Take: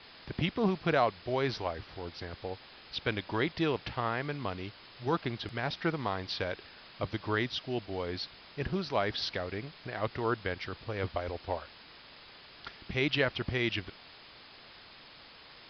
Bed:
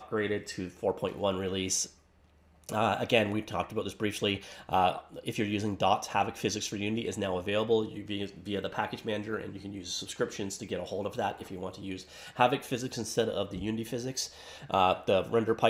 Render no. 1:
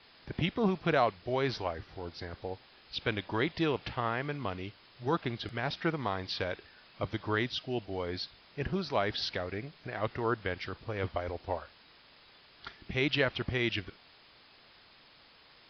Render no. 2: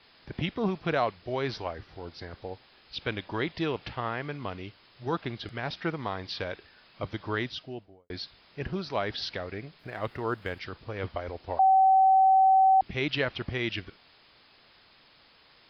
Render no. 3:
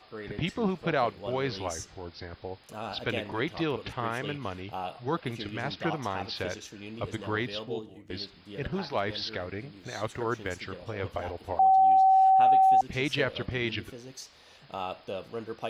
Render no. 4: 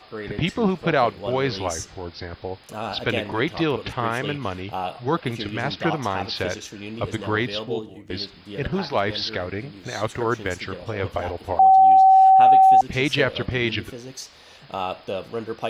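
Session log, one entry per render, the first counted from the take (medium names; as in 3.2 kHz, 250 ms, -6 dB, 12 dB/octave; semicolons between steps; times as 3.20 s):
noise print and reduce 6 dB
7.44–8.10 s: studio fade out; 9.79–10.59 s: median filter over 5 samples; 11.59–12.81 s: bleep 765 Hz -16.5 dBFS
add bed -10 dB
trim +7.5 dB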